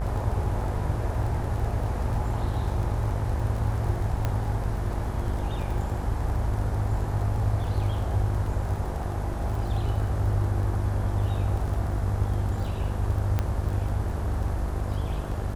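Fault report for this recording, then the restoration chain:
mains buzz 50 Hz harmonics 36 −31 dBFS
surface crackle 23 per second −33 dBFS
0:04.25: click −14 dBFS
0:13.39: click −13 dBFS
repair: click removal
hum removal 50 Hz, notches 36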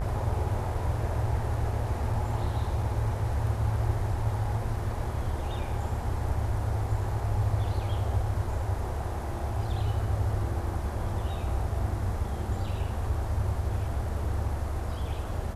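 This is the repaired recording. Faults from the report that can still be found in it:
none of them is left

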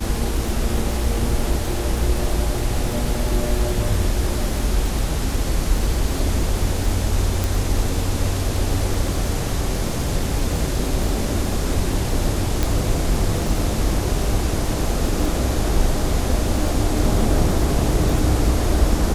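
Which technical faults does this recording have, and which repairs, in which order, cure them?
surface crackle 48 per second −25 dBFS
0:07.44: click
0:12.63: click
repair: click removal

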